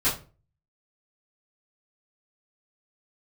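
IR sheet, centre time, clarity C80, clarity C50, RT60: 28 ms, 14.0 dB, 8.5 dB, 0.35 s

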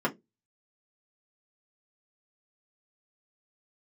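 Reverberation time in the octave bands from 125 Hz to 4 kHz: 0.25 s, 0.25 s, 0.25 s, 0.10 s, 0.15 s, 0.15 s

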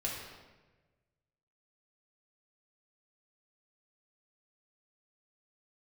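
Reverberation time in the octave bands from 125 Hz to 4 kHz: 1.8 s, 1.4 s, 1.4 s, 1.1 s, 1.1 s, 0.90 s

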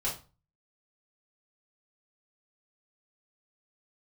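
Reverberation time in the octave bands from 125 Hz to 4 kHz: 0.55 s, 0.40 s, 0.35 s, 0.35 s, 0.30 s, 0.25 s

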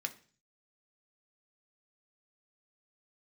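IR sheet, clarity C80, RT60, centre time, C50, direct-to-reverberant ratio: 20.5 dB, 0.40 s, 6 ms, 16.5 dB, 5.0 dB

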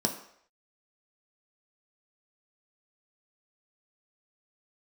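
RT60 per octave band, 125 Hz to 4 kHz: 0.40 s, 0.50 s, 0.65 s, 0.65 s, 0.65 s, 0.60 s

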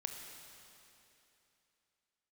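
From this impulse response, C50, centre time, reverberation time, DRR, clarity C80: 4.0 dB, 78 ms, 3.0 s, 3.0 dB, 5.0 dB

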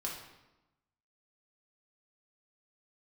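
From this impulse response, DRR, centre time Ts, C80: -3.5 dB, 43 ms, 7.0 dB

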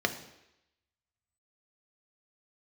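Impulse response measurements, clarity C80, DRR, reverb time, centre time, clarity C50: 14.0 dB, 6.0 dB, 0.85 s, 10 ms, 11.5 dB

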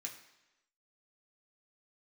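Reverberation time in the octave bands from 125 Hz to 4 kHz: 0.85 s, 0.95 s, 0.95 s, 1.0 s, 1.0 s, 0.95 s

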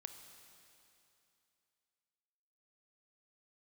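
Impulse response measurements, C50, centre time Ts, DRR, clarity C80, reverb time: 7.5 dB, 40 ms, 7.0 dB, 8.0 dB, 2.8 s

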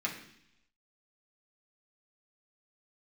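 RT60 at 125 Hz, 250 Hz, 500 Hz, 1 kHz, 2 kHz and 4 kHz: 0.90 s, 0.90 s, 0.70 s, 0.70 s, 0.90 s, 0.95 s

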